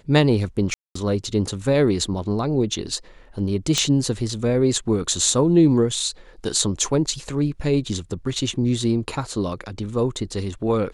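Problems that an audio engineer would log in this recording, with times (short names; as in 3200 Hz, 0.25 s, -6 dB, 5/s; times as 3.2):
0.74–0.95 gap 0.214 s
3.78 pop -6 dBFS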